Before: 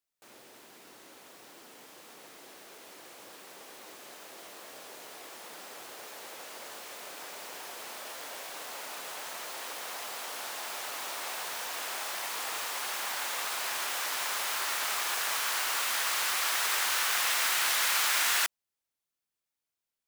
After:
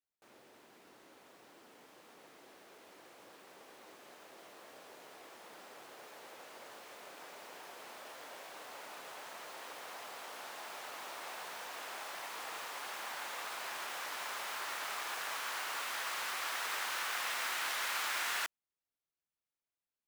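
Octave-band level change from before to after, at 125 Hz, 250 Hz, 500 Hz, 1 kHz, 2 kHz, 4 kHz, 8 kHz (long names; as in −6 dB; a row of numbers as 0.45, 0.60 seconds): can't be measured, −5.0 dB, −5.0 dB, −6.0 dB, −7.0 dB, −10.0 dB, −12.5 dB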